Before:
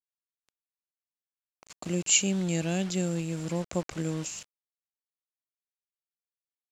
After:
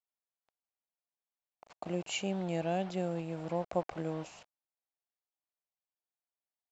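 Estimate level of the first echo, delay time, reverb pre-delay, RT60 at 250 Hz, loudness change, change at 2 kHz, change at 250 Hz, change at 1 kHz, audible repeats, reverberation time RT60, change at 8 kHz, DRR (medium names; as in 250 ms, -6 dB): no echo, no echo, no reverb, no reverb, -7.0 dB, -7.5 dB, -7.0 dB, +4.0 dB, no echo, no reverb, -20.0 dB, no reverb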